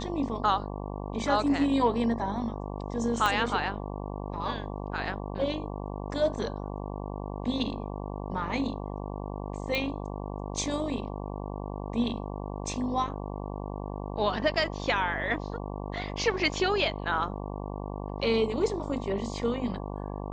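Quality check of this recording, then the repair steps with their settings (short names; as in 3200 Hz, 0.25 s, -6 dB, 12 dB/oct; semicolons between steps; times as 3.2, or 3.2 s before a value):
buzz 50 Hz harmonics 23 -36 dBFS
3.26 pop -12 dBFS
9.75 pop -16 dBFS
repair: de-click; de-hum 50 Hz, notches 23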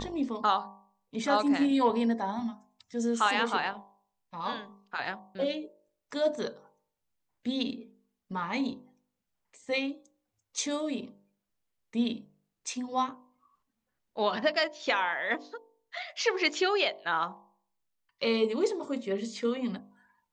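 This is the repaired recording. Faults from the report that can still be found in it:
3.26 pop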